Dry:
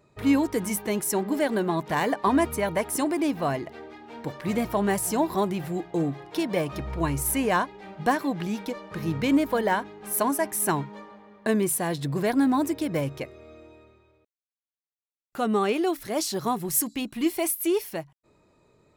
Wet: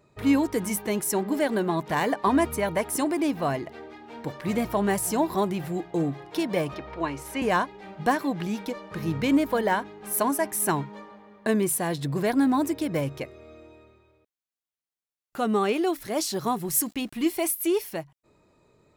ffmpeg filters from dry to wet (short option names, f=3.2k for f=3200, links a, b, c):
-filter_complex "[0:a]asettb=1/sr,asplit=3[a][b][c];[a]atrim=end=6.744[d];[b]atrim=start=6.74:end=7.42,asetpts=PTS-STARTPTS,afade=t=in:d=0.004:c=qsin,afade=t=out:st=0.676:d=0.004:c=qsin,acrossover=split=270 5400:gain=0.2 1 0.126[e][f][g];[e][f][g]amix=inputs=3:normalize=0[h];[c]atrim=start=7.416[i];[d][h]acrossfade=d=0.004:c1=hsin:c2=qsin[j];[j][i]acrossfade=d=0.004:c1=qsin:c2=hsin,asettb=1/sr,asplit=3[k][l][m];[k]atrim=end=15.444[n];[l]atrim=start=15.44:end=17.23,asetpts=PTS-STARTPTS,afade=t=in:d=0.004:c=qsin,afade=t=out:st=1.786:d=0.004:c=qsin,aeval=exprs='val(0)*gte(abs(val(0)),0.00335)':c=same[o];[m]atrim=start=17.226[p];[n][o]acrossfade=d=0.004:c1=hsin:c2=qsin[q];[q][p]acrossfade=d=0.004:c1=qsin:c2=hsin"